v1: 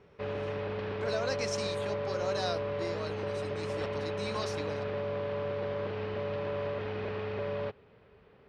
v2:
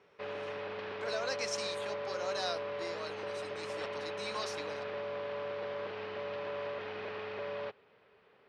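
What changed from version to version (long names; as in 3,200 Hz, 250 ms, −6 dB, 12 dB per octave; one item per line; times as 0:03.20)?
master: add high-pass filter 710 Hz 6 dB per octave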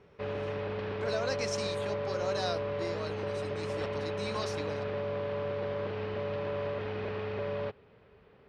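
master: remove high-pass filter 710 Hz 6 dB per octave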